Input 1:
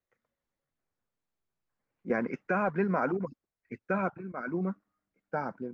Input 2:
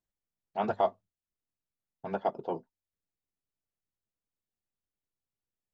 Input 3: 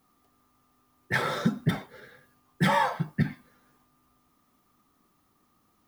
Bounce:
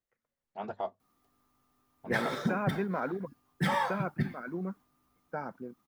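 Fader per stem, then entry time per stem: -4.5, -8.5, -5.5 dB; 0.00, 0.00, 1.00 s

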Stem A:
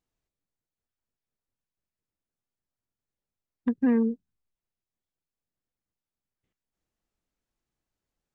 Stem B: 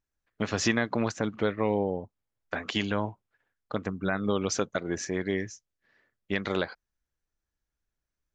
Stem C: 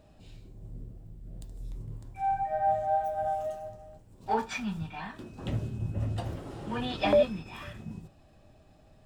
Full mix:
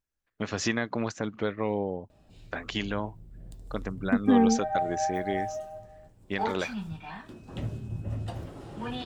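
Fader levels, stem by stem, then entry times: +1.5, -2.5, -2.0 dB; 0.45, 0.00, 2.10 s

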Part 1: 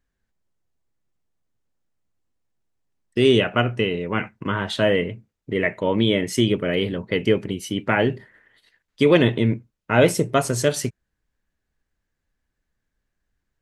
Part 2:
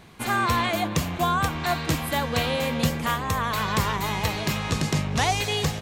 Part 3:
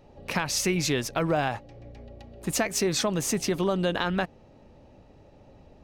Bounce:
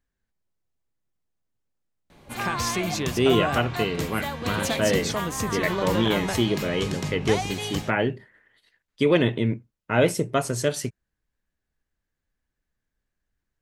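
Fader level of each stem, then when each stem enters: -4.0, -6.0, -3.0 dB; 0.00, 2.10, 2.10 s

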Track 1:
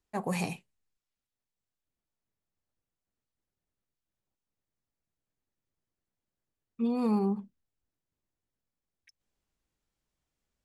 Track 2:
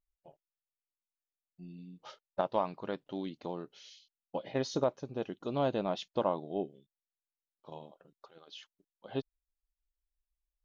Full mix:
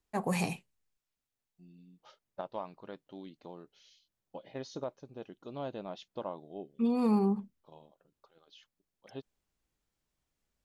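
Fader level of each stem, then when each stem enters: +0.5, -8.5 dB; 0.00, 0.00 s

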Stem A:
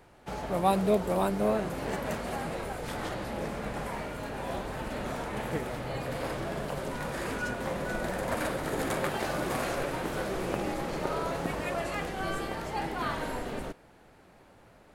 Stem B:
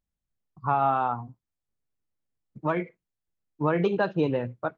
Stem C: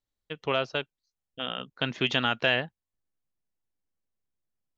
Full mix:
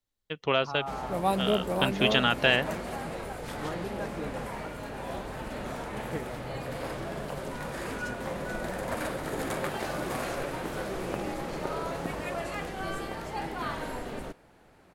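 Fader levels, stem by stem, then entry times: -1.5, -14.0, +1.5 dB; 0.60, 0.00, 0.00 s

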